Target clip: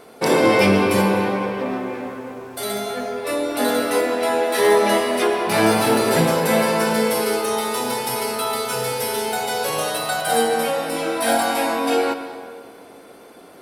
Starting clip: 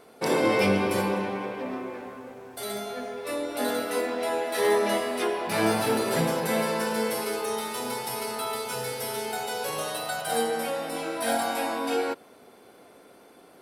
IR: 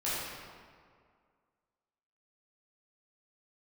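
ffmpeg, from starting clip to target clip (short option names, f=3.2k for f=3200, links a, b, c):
-filter_complex "[0:a]acontrast=72,asplit=2[a][b];[1:a]atrim=start_sample=2205,adelay=123[c];[b][c]afir=irnorm=-1:irlink=0,volume=-17.5dB[d];[a][d]amix=inputs=2:normalize=0,volume=1dB"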